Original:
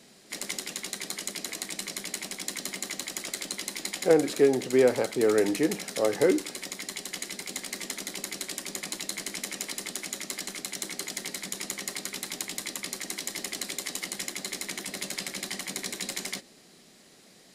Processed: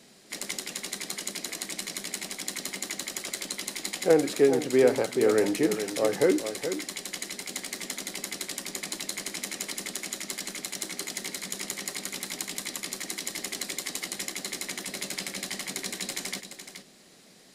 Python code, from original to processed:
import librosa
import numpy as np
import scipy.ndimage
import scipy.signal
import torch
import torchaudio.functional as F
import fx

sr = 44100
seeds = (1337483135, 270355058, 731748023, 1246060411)

y = x + 10.0 ** (-9.5 / 20.0) * np.pad(x, (int(424 * sr / 1000.0), 0))[:len(x)]